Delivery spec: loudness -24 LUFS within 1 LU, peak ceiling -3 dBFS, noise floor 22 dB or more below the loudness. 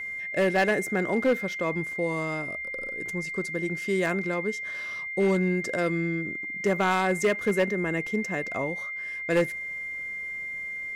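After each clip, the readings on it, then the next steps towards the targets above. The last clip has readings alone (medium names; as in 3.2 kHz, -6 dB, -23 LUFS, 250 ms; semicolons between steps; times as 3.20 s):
clipped samples 0.7%; clipping level -17.0 dBFS; steady tone 2.1 kHz; tone level -32 dBFS; loudness -27.5 LUFS; peak level -17.0 dBFS; loudness target -24.0 LUFS
-> clip repair -17 dBFS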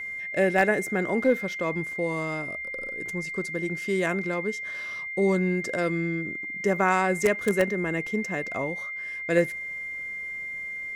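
clipped samples 0.0%; steady tone 2.1 kHz; tone level -32 dBFS
-> band-stop 2.1 kHz, Q 30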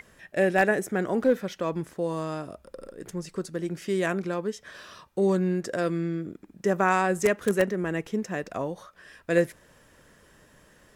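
steady tone not found; loudness -27.5 LUFS; peak level -8.5 dBFS; loudness target -24.0 LUFS
-> trim +3.5 dB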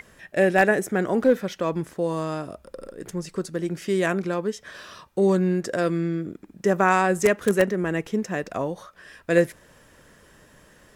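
loudness -24.0 LUFS; peak level -5.0 dBFS; noise floor -55 dBFS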